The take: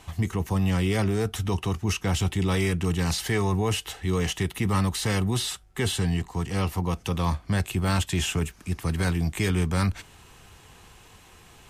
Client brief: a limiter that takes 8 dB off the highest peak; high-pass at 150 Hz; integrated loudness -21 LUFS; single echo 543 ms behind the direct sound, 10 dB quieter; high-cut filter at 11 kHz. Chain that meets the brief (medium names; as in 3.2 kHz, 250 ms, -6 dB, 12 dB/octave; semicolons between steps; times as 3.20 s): high-pass 150 Hz; low-pass 11 kHz; peak limiter -23 dBFS; delay 543 ms -10 dB; trim +11 dB